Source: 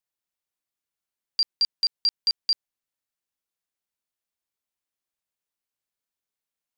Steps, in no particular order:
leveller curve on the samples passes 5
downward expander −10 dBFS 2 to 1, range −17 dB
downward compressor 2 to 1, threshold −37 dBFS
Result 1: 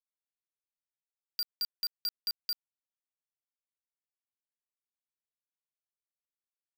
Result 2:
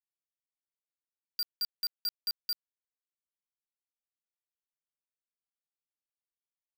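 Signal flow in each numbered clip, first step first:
downward expander, then leveller curve on the samples, then downward compressor
downward expander, then downward compressor, then leveller curve on the samples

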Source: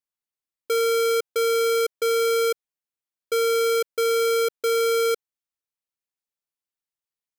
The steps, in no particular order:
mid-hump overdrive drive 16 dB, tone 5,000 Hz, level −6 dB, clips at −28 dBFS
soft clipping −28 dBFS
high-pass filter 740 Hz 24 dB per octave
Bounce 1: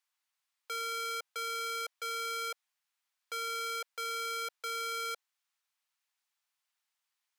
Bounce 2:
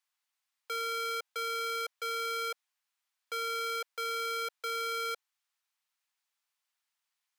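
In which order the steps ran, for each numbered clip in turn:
mid-hump overdrive, then soft clipping, then high-pass filter
mid-hump overdrive, then high-pass filter, then soft clipping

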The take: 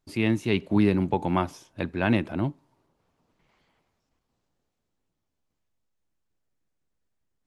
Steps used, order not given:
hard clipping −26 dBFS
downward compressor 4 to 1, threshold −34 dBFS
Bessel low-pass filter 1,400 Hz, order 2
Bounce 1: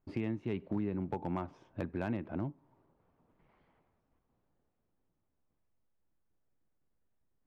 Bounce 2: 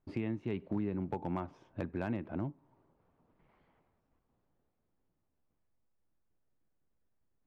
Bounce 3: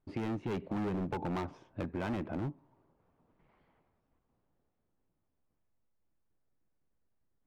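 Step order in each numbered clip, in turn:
Bessel low-pass filter, then downward compressor, then hard clipping
downward compressor, then Bessel low-pass filter, then hard clipping
Bessel low-pass filter, then hard clipping, then downward compressor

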